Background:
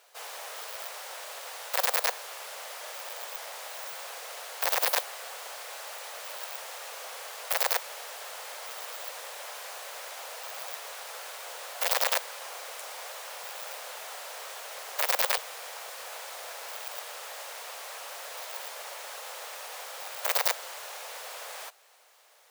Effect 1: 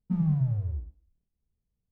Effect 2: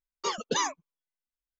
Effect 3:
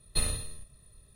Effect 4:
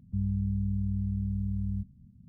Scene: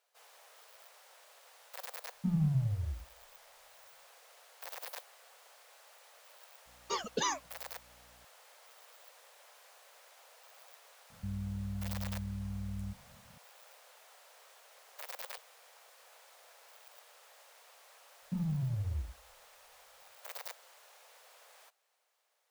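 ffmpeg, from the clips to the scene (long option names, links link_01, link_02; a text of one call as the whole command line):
ffmpeg -i bed.wav -i cue0.wav -i cue1.wav -i cue2.wav -i cue3.wav -filter_complex "[1:a]asplit=2[link_01][link_02];[0:a]volume=-18.5dB[link_03];[2:a]aeval=exprs='val(0)+0.001*(sin(2*PI*60*n/s)+sin(2*PI*2*60*n/s)/2+sin(2*PI*3*60*n/s)/3+sin(2*PI*4*60*n/s)/4+sin(2*PI*5*60*n/s)/5)':channel_layout=same[link_04];[4:a]acompressor=threshold=-31dB:ratio=6:attack=30:release=31:knee=6:detection=peak[link_05];[link_02]acompressor=threshold=-28dB:ratio=6:attack=3.2:release=140:knee=1:detection=peak[link_06];[link_01]atrim=end=1.91,asetpts=PTS-STARTPTS,volume=-4.5dB,afade=type=in:duration=0.004:curve=hsin,afade=type=out:start_time=1.906:duration=0.004:curve=hsin,adelay=2140[link_07];[link_04]atrim=end=1.59,asetpts=PTS-STARTPTS,volume=-5dB,afade=type=in:duration=0.004:curve=hsin,afade=type=out:start_time=1.586:duration=0.004:curve=hsin,adelay=293706S[link_08];[link_05]atrim=end=2.28,asetpts=PTS-STARTPTS,volume=-7dB,afade=type=in:duration=0.004:curve=hsin,afade=type=out:start_time=2.276:duration=0.004:curve=hsin,adelay=11100[link_09];[link_06]atrim=end=1.91,asetpts=PTS-STARTPTS,volume=-3dB,afade=type=in:duration=0.004:curve=hsin,afade=type=out:start_time=1.906:duration=0.004:curve=hsin,adelay=18220[link_10];[link_03][link_07][link_08][link_09][link_10]amix=inputs=5:normalize=0" out.wav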